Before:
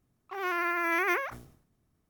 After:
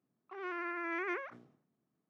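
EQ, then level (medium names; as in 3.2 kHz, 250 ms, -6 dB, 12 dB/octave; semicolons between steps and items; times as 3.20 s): high-pass 160 Hz 24 dB/octave; dynamic bell 810 Hz, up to -7 dB, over -47 dBFS, Q 1.9; tape spacing loss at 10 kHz 28 dB; -4.5 dB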